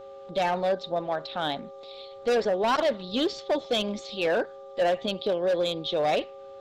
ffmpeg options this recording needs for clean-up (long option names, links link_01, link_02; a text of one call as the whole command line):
ffmpeg -i in.wav -af "bandreject=frequency=396.1:width_type=h:width=4,bandreject=frequency=792.2:width_type=h:width=4,bandreject=frequency=1188.3:width_type=h:width=4,bandreject=frequency=550:width=30" out.wav